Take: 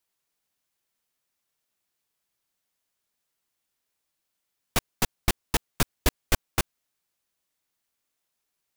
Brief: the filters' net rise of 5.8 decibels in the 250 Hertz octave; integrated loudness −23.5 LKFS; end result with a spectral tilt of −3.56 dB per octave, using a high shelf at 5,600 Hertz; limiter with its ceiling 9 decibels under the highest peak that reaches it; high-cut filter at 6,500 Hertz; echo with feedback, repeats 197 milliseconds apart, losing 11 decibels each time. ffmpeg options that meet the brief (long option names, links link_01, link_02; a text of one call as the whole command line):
ffmpeg -i in.wav -af "lowpass=6500,equalizer=frequency=250:width_type=o:gain=7.5,highshelf=frequency=5600:gain=7,alimiter=limit=-15.5dB:level=0:latency=1,aecho=1:1:197|394|591:0.282|0.0789|0.0221,volume=11dB" out.wav